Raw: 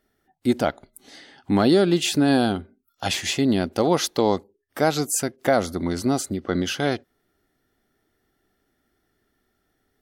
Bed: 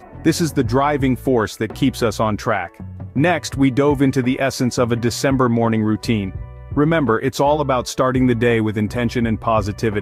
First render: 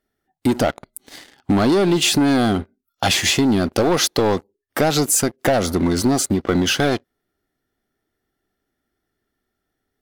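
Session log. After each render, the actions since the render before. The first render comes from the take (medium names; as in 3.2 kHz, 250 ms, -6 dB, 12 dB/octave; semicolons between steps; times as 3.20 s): waveshaping leveller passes 3; compression, threshold -14 dBFS, peak gain reduction 6 dB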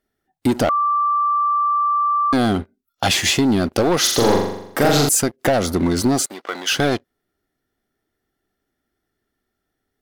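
0.69–2.33 s: bleep 1.17 kHz -15 dBFS; 4.00–5.09 s: flutter echo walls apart 7.2 m, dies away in 0.8 s; 6.26–6.72 s: high-pass 780 Hz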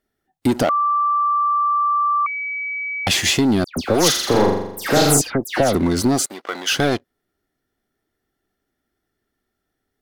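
0.63–1.23 s: high-pass 160 Hz; 2.26–3.07 s: bleep 2.28 kHz -23 dBFS; 3.64–5.75 s: phase dispersion lows, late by 125 ms, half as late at 2.7 kHz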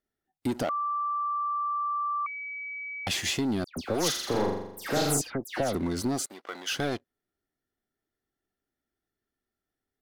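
trim -11.5 dB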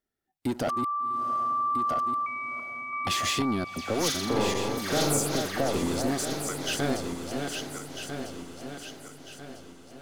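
backward echo that repeats 649 ms, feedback 64%, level -5 dB; echo that smears into a reverb 735 ms, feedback 48%, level -14 dB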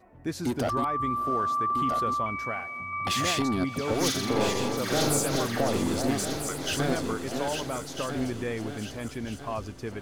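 add bed -16.5 dB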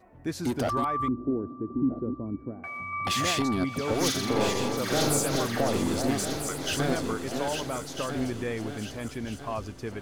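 1.08–2.64 s: resonant low-pass 310 Hz, resonance Q 3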